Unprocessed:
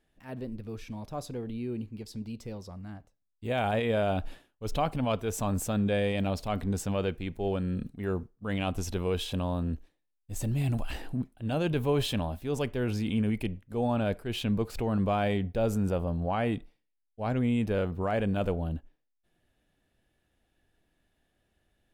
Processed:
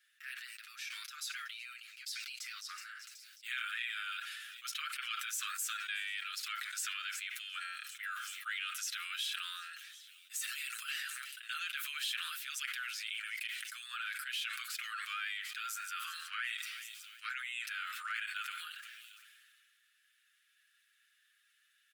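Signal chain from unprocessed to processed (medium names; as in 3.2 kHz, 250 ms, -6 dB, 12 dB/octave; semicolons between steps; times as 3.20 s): steep high-pass 1.3 kHz 96 dB/octave; comb 7.3 ms, depth 78%; compression 3:1, threshold -46 dBFS, peak gain reduction 13 dB; feedback echo behind a high-pass 374 ms, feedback 61%, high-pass 3.5 kHz, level -23 dB; decay stretcher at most 24 dB/s; trim +6 dB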